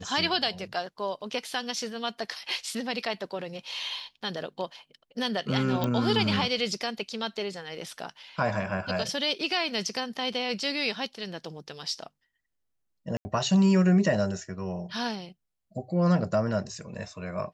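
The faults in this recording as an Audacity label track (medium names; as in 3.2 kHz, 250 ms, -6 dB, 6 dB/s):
5.840000	5.840000	pop -14 dBFS
13.170000	13.250000	dropout 80 ms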